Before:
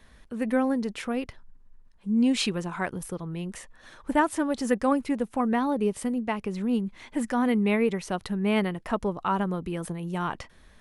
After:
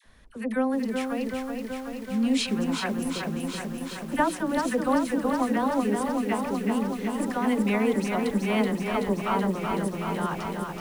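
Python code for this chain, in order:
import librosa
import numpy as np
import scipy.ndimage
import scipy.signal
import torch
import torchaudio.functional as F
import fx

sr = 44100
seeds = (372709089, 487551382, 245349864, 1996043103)

y = fx.hum_notches(x, sr, base_hz=60, count=8)
y = fx.dispersion(y, sr, late='lows', ms=47.0, hz=860.0)
y = fx.echo_crushed(y, sr, ms=377, feedback_pct=80, bits=8, wet_db=-4.5)
y = y * 10.0 ** (-1.0 / 20.0)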